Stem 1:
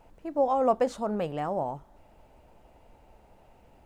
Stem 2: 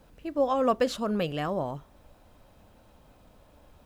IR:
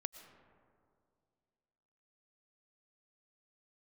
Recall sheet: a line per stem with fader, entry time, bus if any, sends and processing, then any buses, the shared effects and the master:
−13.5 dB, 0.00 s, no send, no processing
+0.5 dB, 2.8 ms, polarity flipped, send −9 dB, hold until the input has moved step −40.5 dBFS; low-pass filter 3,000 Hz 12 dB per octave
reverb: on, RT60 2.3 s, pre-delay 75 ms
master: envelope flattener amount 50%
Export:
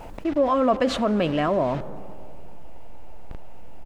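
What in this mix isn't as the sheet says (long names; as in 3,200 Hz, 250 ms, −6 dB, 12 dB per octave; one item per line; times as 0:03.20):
stem 1 −13.5 dB → −4.5 dB
stem 2: polarity flipped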